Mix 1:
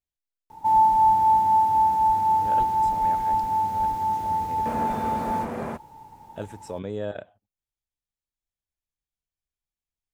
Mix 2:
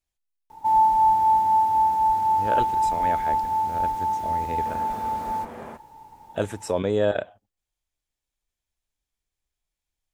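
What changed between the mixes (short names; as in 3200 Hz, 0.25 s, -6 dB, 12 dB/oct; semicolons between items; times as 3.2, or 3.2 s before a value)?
speech +10.5 dB; second sound -6.0 dB; master: add bell 140 Hz -5.5 dB 1.9 oct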